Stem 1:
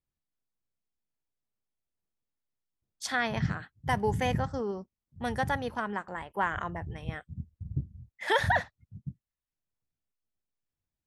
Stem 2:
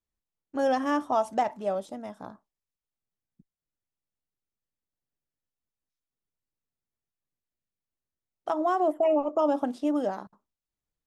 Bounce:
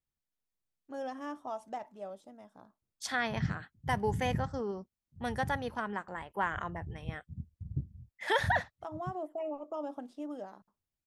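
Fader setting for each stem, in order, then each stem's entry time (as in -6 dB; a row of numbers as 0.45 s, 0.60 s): -3.0 dB, -14.0 dB; 0.00 s, 0.35 s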